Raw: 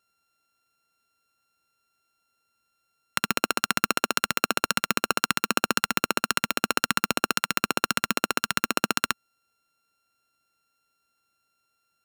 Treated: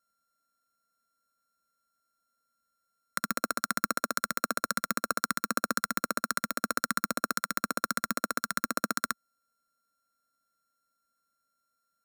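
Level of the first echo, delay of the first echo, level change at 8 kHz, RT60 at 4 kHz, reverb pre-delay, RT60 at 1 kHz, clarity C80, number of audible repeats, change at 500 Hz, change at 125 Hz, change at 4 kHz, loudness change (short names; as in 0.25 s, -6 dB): none, none, -5.0 dB, none, none, none, none, none, -6.5 dB, -7.5 dB, -11.5 dB, -6.0 dB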